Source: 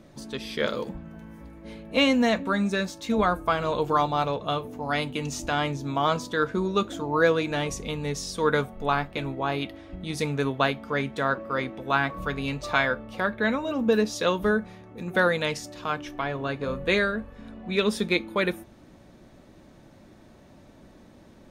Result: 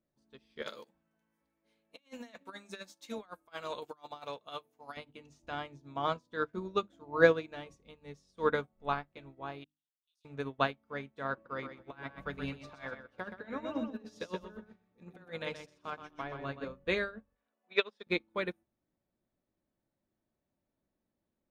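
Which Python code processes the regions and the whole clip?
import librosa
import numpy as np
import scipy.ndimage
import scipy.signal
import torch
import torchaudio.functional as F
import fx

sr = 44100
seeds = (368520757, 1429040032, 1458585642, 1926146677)

y = fx.chain(x, sr, fx.riaa(side='recording'),
    fx.over_compress(threshold_db=-27.0, ratio=-0.5), at=(0.62, 4.97))
y = fx.chain(y, sr, fx.steep_highpass(hz=2700.0, slope=96),
    fx.level_steps(step_db=21),
    fx.detune_double(cents=13), at=(9.64, 10.25))
y = fx.chain(y, sr, fx.over_compress(threshold_db=-26.0, ratio=-0.5),
    fx.echo_feedback(ms=125, feedback_pct=27, wet_db=-4.5), at=(11.33, 16.68))
y = fx.chain(y, sr, fx.bandpass_edges(low_hz=560.0, high_hz=5300.0),
    fx.transient(attack_db=7, sustain_db=-3), at=(17.35, 18.07))
y = fx.high_shelf(y, sr, hz=6600.0, db=-10.5)
y = fx.hum_notches(y, sr, base_hz=50, count=6)
y = fx.upward_expand(y, sr, threshold_db=-39.0, expansion=2.5)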